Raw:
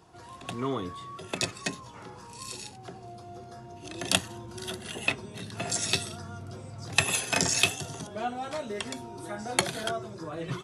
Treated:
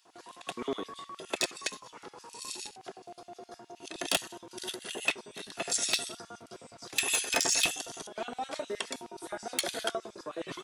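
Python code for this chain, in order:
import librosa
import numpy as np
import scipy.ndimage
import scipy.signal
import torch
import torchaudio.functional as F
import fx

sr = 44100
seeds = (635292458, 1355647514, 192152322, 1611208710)

y = np.clip(x, -10.0 ** (-18.0 / 20.0), 10.0 ** (-18.0 / 20.0))
y = fx.filter_lfo_highpass(y, sr, shape='square', hz=9.6, low_hz=330.0, high_hz=2900.0, q=0.94)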